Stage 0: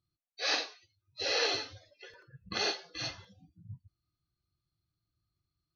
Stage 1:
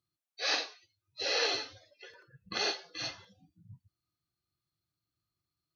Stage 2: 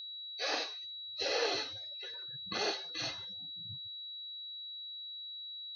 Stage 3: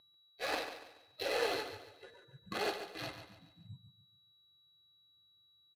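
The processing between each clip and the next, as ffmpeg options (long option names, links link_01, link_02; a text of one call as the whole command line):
ffmpeg -i in.wav -af "highpass=frequency=200:poles=1" out.wav
ffmpeg -i in.wav -filter_complex "[0:a]aeval=exprs='val(0)+0.00708*sin(2*PI*3900*n/s)':channel_layout=same,acrossover=split=1100[link_01][link_02];[link_02]alimiter=level_in=4.5dB:limit=-24dB:level=0:latency=1:release=31,volume=-4.5dB[link_03];[link_01][link_03]amix=inputs=2:normalize=0,volume=1dB" out.wav
ffmpeg -i in.wav -filter_complex "[0:a]adynamicsmooth=sensitivity=7.5:basefreq=710,asplit=2[link_01][link_02];[link_02]aecho=0:1:142|284|426|568:0.316|0.117|0.0433|0.016[link_03];[link_01][link_03]amix=inputs=2:normalize=0" out.wav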